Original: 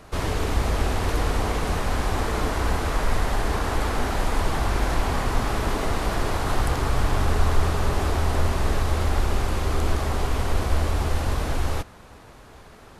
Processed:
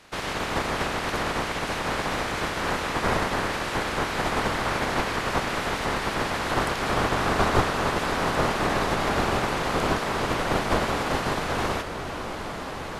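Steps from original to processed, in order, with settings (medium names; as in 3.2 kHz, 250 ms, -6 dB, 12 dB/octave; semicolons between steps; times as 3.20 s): spectral peaks clipped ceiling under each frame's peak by 24 dB; low-pass 3.4 kHz 6 dB/octave; on a send: echo that smears into a reverb 1553 ms, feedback 41%, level -8 dB; on the sum: trim -4.5 dB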